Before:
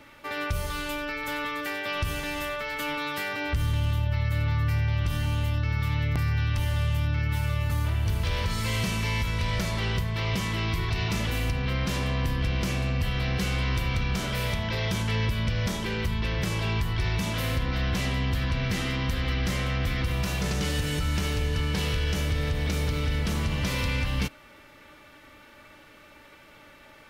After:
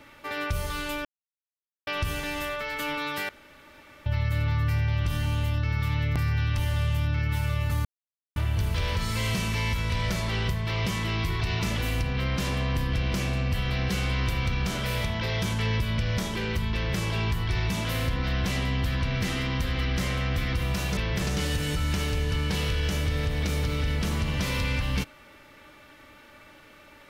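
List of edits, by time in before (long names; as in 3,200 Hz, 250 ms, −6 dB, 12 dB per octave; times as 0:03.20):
0:01.05–0:01.87: silence
0:03.29–0:04.06: fill with room tone
0:07.85: splice in silence 0.51 s
0:16.23–0:16.48: duplicate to 0:20.46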